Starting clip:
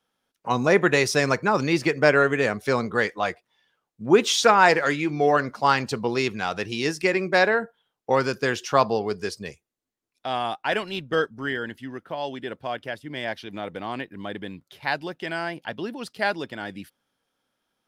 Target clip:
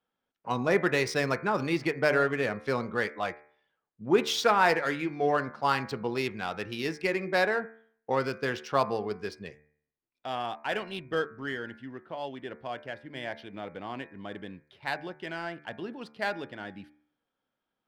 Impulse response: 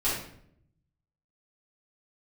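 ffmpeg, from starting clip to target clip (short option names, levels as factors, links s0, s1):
-af "adynamicsmooth=sensitivity=4:basefreq=3800,equalizer=f=6700:w=3:g=-4,bandreject=f=74.64:t=h:w=4,bandreject=f=149.28:t=h:w=4,bandreject=f=223.92:t=h:w=4,bandreject=f=298.56:t=h:w=4,bandreject=f=373.2:t=h:w=4,bandreject=f=447.84:t=h:w=4,bandreject=f=522.48:t=h:w=4,bandreject=f=597.12:t=h:w=4,bandreject=f=671.76:t=h:w=4,bandreject=f=746.4:t=h:w=4,bandreject=f=821.04:t=h:w=4,bandreject=f=895.68:t=h:w=4,bandreject=f=970.32:t=h:w=4,bandreject=f=1044.96:t=h:w=4,bandreject=f=1119.6:t=h:w=4,bandreject=f=1194.24:t=h:w=4,bandreject=f=1268.88:t=h:w=4,bandreject=f=1343.52:t=h:w=4,bandreject=f=1418.16:t=h:w=4,bandreject=f=1492.8:t=h:w=4,bandreject=f=1567.44:t=h:w=4,bandreject=f=1642.08:t=h:w=4,bandreject=f=1716.72:t=h:w=4,bandreject=f=1791.36:t=h:w=4,bandreject=f=1866:t=h:w=4,bandreject=f=1940.64:t=h:w=4,bandreject=f=2015.28:t=h:w=4,bandreject=f=2089.92:t=h:w=4,bandreject=f=2164.56:t=h:w=4,bandreject=f=2239.2:t=h:w=4,bandreject=f=2313.84:t=h:w=4,bandreject=f=2388.48:t=h:w=4,bandreject=f=2463.12:t=h:w=4,volume=0.501"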